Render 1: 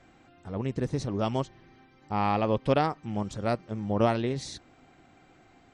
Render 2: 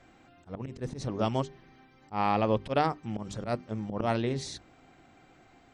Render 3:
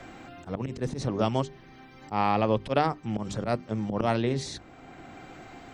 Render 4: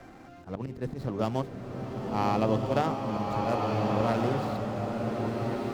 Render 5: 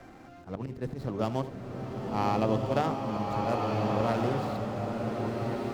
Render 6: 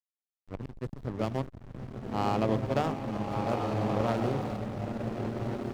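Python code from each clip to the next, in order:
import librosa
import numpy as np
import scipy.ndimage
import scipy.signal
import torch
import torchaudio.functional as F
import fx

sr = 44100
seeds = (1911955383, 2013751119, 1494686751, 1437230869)

y1 = fx.auto_swell(x, sr, attack_ms=104.0)
y1 = fx.hum_notches(y1, sr, base_hz=50, count=8)
y2 = fx.band_squash(y1, sr, depth_pct=40)
y2 = F.gain(torch.from_numpy(y2), 3.0).numpy()
y3 = scipy.signal.medfilt(y2, 15)
y3 = fx.rev_bloom(y3, sr, seeds[0], attack_ms=1530, drr_db=-1.0)
y3 = F.gain(torch.from_numpy(y3), -3.0).numpy()
y4 = y3 + 10.0 ** (-16.0 / 20.0) * np.pad(y3, (int(76 * sr / 1000.0), 0))[:len(y3)]
y4 = F.gain(torch.from_numpy(y4), -1.0).numpy()
y5 = fx.backlash(y4, sr, play_db=-29.5)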